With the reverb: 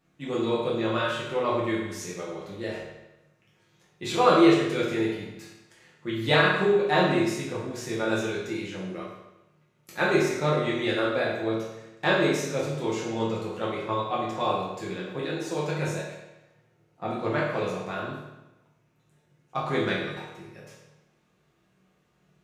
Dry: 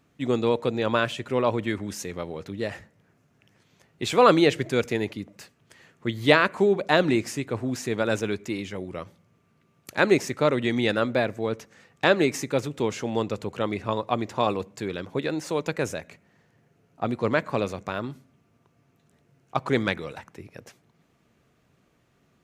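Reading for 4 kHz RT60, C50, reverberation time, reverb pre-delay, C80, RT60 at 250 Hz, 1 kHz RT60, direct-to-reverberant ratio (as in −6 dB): 0.90 s, 1.5 dB, 1.0 s, 5 ms, 4.5 dB, 1.1 s, 1.0 s, −7.0 dB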